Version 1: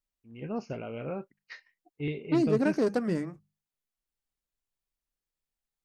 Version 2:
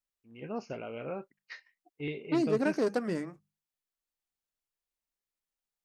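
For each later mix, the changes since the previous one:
master: add low-shelf EQ 200 Hz −10.5 dB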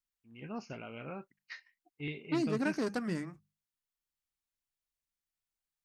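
second voice: add parametric band 61 Hz +7.5 dB 1.9 octaves
master: add parametric band 500 Hz −9 dB 1.2 octaves

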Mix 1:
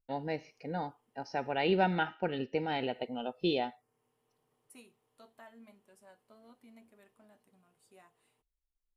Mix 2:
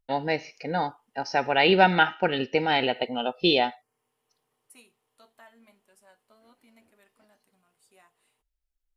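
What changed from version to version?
first voice +10.0 dB
master: add tilt shelving filter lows −4.5 dB, about 690 Hz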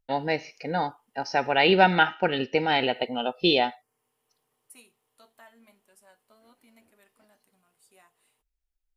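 second voice: add high-shelf EQ 10,000 Hz +7.5 dB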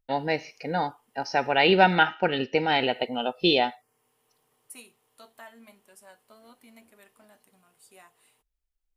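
second voice +6.0 dB

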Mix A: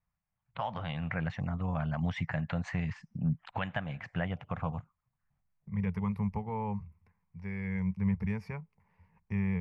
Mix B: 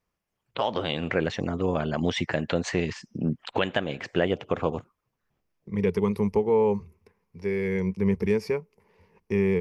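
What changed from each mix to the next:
master: remove drawn EQ curve 160 Hz 0 dB, 380 Hz −25 dB, 750 Hz −6 dB, 2,100 Hz −7 dB, 3,300 Hz −16 dB, 5,400 Hz −19 dB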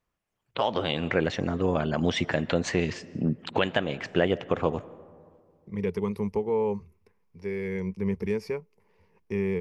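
second voice −4.5 dB
reverb: on, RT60 2.1 s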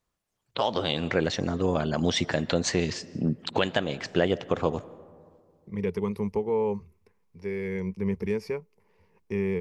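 first voice: add high shelf with overshoot 3,400 Hz +6 dB, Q 1.5

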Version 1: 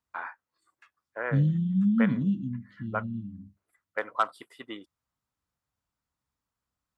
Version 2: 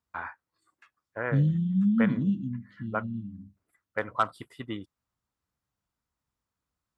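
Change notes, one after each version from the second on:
first voice: remove high-pass filter 370 Hz 12 dB per octave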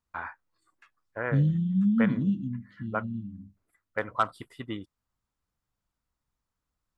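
master: remove high-pass filter 61 Hz

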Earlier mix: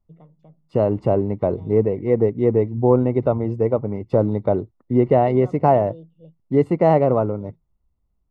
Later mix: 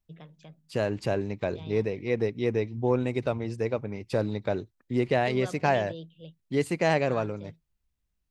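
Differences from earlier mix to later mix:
second voice −9.5 dB
master: remove Savitzky-Golay smoothing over 65 samples

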